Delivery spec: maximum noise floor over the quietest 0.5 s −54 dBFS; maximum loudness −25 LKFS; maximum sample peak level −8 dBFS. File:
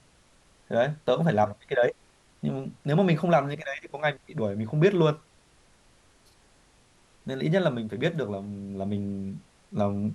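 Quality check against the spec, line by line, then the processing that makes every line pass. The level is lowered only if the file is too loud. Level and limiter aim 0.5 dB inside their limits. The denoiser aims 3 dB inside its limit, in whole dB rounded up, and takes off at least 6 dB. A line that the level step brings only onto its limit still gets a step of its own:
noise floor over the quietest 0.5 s −60 dBFS: in spec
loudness −27.5 LKFS: in spec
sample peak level −8.5 dBFS: in spec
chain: no processing needed

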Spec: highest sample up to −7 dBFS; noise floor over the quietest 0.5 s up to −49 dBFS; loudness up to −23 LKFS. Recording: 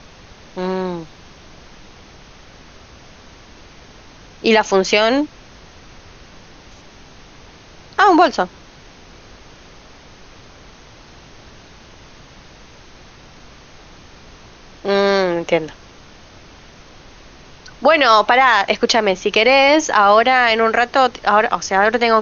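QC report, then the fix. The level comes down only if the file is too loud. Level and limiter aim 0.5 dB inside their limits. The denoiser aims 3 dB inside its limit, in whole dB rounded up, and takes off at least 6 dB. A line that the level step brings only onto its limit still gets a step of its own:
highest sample −1.5 dBFS: out of spec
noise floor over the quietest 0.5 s −42 dBFS: out of spec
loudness −14.5 LKFS: out of spec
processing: level −9 dB

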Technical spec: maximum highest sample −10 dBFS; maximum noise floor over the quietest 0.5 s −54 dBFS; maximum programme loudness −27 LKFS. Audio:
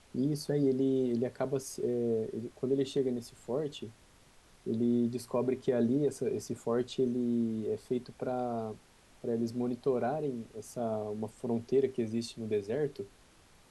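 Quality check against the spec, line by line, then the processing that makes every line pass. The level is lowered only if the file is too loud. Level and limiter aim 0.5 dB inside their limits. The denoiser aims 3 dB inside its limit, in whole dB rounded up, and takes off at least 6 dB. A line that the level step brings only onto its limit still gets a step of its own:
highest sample −18.0 dBFS: in spec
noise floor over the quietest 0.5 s −61 dBFS: in spec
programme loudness −33.5 LKFS: in spec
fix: no processing needed

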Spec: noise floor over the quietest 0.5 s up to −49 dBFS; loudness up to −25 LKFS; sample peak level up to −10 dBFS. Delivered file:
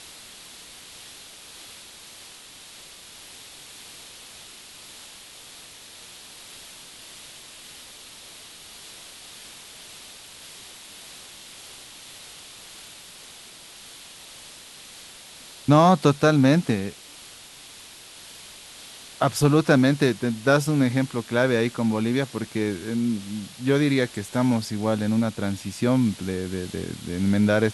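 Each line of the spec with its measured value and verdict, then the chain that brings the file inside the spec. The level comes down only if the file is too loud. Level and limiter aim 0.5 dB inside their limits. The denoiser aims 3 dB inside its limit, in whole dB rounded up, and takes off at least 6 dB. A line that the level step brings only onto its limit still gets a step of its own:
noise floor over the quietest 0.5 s −45 dBFS: out of spec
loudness −22.5 LKFS: out of spec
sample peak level −5.5 dBFS: out of spec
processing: broadband denoise 6 dB, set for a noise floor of −45 dBFS
level −3 dB
brickwall limiter −10.5 dBFS

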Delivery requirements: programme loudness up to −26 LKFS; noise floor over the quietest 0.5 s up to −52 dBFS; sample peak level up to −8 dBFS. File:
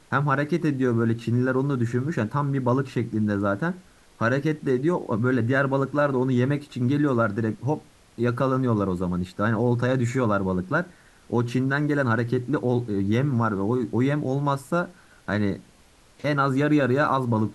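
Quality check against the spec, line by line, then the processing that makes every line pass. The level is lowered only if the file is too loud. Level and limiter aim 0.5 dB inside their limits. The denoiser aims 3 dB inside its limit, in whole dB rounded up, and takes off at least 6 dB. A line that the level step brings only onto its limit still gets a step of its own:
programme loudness −24.5 LKFS: out of spec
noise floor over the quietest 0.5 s −55 dBFS: in spec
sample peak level −9.0 dBFS: in spec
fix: level −2 dB

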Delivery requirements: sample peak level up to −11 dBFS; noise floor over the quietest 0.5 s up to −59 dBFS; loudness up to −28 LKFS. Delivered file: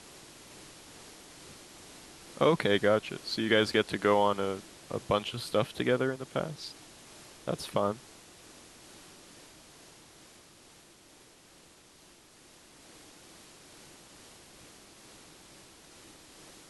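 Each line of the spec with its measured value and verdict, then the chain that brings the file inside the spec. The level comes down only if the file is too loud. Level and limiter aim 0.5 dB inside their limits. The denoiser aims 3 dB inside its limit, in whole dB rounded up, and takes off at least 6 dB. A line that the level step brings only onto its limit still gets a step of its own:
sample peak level −10.5 dBFS: out of spec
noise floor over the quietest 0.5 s −58 dBFS: out of spec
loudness −30.0 LKFS: in spec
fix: broadband denoise 6 dB, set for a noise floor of −58 dBFS
brickwall limiter −11.5 dBFS

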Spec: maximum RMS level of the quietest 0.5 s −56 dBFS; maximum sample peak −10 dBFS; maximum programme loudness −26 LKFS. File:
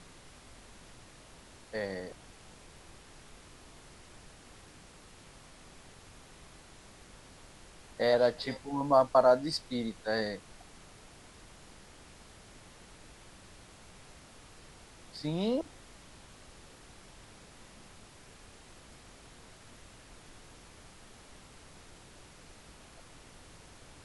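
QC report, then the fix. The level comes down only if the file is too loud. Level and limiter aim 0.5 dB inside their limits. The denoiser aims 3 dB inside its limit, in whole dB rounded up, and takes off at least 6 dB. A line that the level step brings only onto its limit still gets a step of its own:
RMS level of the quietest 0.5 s −54 dBFS: out of spec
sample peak −11.5 dBFS: in spec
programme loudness −30.5 LKFS: in spec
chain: broadband denoise 6 dB, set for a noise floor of −54 dBFS

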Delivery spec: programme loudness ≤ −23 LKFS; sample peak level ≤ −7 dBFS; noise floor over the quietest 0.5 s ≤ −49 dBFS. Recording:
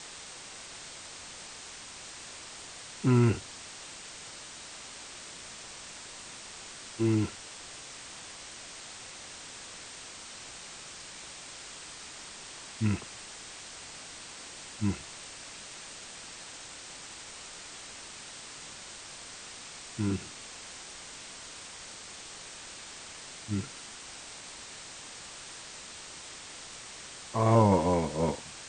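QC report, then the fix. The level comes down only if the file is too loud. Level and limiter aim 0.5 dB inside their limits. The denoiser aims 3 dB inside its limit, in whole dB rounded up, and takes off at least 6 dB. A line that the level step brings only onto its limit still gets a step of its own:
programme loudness −36.0 LKFS: in spec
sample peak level −10.0 dBFS: in spec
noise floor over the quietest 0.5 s −46 dBFS: out of spec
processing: broadband denoise 6 dB, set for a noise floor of −46 dBFS

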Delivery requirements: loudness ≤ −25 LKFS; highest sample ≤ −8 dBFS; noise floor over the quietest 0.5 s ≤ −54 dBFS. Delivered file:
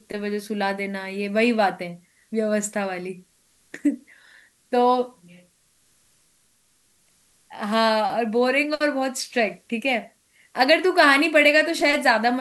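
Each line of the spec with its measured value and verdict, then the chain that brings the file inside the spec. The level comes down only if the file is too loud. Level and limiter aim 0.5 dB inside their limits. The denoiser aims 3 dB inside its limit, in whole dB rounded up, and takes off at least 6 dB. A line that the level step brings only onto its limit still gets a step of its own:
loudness −21.0 LKFS: out of spec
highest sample −3.0 dBFS: out of spec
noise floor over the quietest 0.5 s −63 dBFS: in spec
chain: level −4.5 dB
brickwall limiter −8.5 dBFS

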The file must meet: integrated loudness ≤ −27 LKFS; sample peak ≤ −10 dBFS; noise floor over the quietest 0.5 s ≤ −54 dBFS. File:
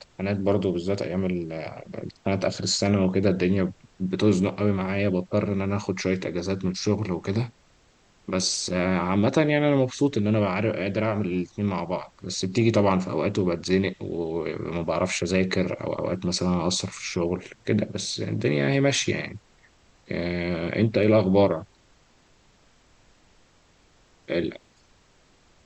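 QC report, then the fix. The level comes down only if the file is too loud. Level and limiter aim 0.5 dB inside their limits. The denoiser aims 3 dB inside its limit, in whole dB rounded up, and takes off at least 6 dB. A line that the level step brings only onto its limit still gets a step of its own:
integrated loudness −25.0 LKFS: out of spec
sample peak −7.5 dBFS: out of spec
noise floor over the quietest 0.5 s −60 dBFS: in spec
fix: level −2.5 dB
brickwall limiter −10.5 dBFS

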